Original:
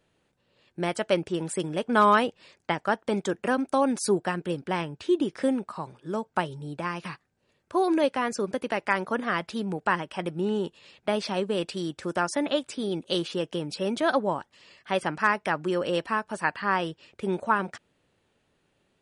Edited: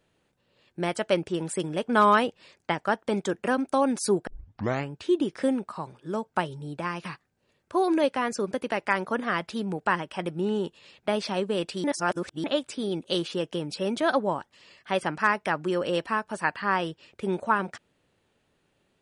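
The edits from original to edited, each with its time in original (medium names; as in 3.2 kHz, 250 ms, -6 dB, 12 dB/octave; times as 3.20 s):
4.27 s: tape start 0.64 s
11.84–12.44 s: reverse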